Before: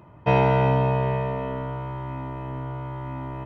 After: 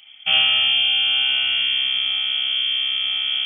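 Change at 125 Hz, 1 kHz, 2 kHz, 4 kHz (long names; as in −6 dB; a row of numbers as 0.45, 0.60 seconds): below −25 dB, −11.5 dB, +12.5 dB, can't be measured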